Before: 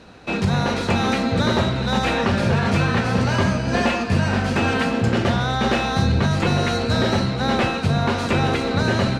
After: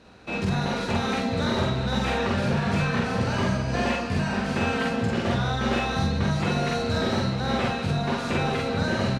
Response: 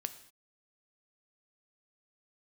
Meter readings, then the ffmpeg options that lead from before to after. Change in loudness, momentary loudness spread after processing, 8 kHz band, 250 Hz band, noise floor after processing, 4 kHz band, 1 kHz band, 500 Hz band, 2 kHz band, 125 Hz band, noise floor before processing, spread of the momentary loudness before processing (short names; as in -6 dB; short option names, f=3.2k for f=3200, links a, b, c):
-5.0 dB, 2 LU, -5.5 dB, -5.0 dB, -30 dBFS, -5.5 dB, -5.0 dB, -4.5 dB, -5.0 dB, -5.5 dB, -25 dBFS, 2 LU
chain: -af "aecho=1:1:46.65|198.3:0.891|0.282,volume=-8dB"